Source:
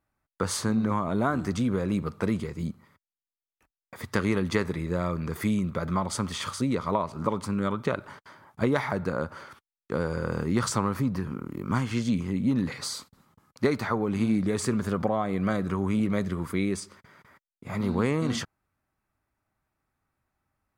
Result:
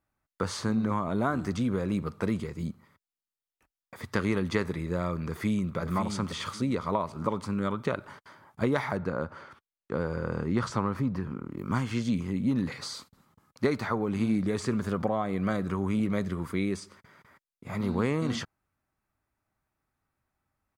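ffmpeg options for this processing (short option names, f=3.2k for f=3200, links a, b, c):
-filter_complex "[0:a]asplit=2[a][b];[b]afade=t=in:st=5.2:d=0.01,afade=t=out:st=5.77:d=0.01,aecho=0:1:550|1100|1650:0.421697|0.105424|0.026356[c];[a][c]amix=inputs=2:normalize=0,asettb=1/sr,asplit=3[d][e][f];[d]atrim=end=8.974[g];[e]atrim=start=8.97:end=11.58,asetpts=PTS-STARTPTS,afade=t=in:d=0.004:c=qsin,afade=t=out:st=2.606:d=0.004:c=qsin,aemphasis=mode=reproduction:type=50kf[h];[f]atrim=start=11.576[i];[g][h]acrossfade=d=0.004:c1=hsin:c2=qsin[j];[j][i]acrossfade=d=0.004:c1=qsin:c2=hsin,acrossover=split=6300[k][l];[l]acompressor=threshold=-48dB:ratio=4:attack=1:release=60[m];[k][m]amix=inputs=2:normalize=0,volume=-2dB"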